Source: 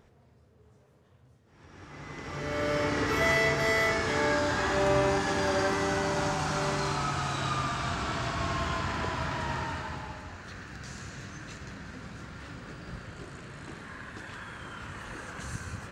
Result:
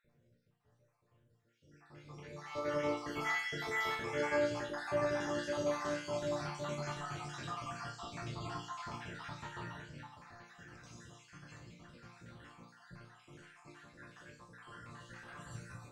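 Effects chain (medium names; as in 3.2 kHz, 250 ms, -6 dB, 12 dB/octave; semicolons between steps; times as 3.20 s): random holes in the spectrogram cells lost 54%; chord resonator A#2 major, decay 0.48 s; trim +8 dB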